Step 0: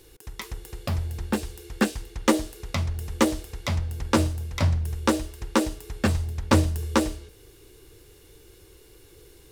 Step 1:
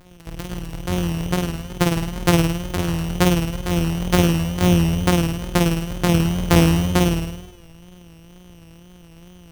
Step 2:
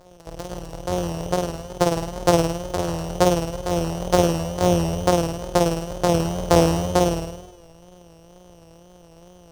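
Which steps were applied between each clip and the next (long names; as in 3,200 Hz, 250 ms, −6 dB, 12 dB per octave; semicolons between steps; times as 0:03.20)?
samples sorted by size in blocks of 256 samples; flutter between parallel walls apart 8.9 metres, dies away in 0.97 s; tape wow and flutter 74 cents; level +2.5 dB
drawn EQ curve 170 Hz 0 dB, 240 Hz −2 dB, 570 Hz +14 dB, 2,300 Hz −3 dB, 5,500 Hz +7 dB, 8,300 Hz +4 dB, 14,000 Hz −2 dB; level −6 dB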